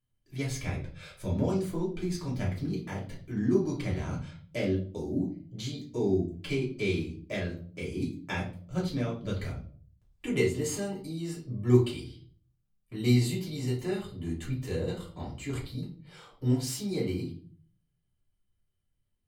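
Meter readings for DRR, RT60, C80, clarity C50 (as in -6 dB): -5.5 dB, 0.45 s, 13.5 dB, 8.0 dB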